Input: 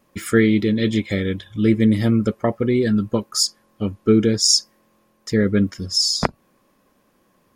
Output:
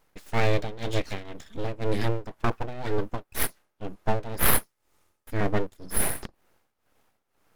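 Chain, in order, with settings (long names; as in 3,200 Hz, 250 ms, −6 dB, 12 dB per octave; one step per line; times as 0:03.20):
0:04.39–0:05.41: octave-band graphic EQ 125/500/8,000 Hz +7/−11/+6 dB
full-wave rectification
amplitude tremolo 2 Hz, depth 83%
boost into a limiter +3 dB
level −5.5 dB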